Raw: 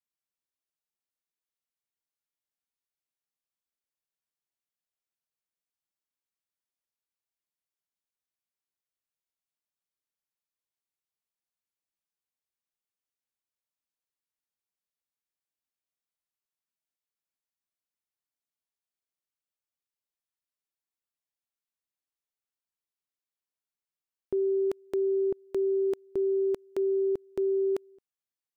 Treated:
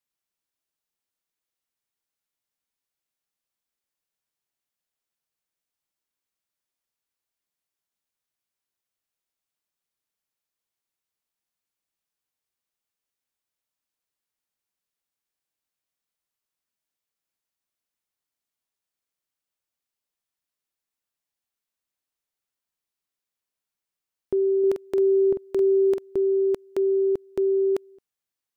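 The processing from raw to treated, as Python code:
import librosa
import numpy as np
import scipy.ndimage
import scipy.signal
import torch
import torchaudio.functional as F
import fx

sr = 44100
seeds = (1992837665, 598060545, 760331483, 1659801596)

y = fx.doubler(x, sr, ms=46.0, db=-6.5, at=(24.59, 26.16))
y = y * librosa.db_to_amplitude(5.0)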